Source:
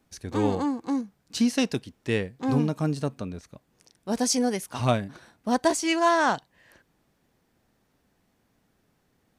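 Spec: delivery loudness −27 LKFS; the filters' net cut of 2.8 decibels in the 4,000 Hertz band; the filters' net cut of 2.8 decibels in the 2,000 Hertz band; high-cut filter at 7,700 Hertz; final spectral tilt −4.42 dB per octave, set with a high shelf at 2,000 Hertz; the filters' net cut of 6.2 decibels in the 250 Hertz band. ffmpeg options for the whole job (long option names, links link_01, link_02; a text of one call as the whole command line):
ffmpeg -i in.wav -af "lowpass=7700,equalizer=frequency=250:width_type=o:gain=-7.5,highshelf=frequency=2000:gain=4,equalizer=frequency=2000:width_type=o:gain=-4.5,equalizer=frequency=4000:width_type=o:gain=-6.5,volume=2dB" out.wav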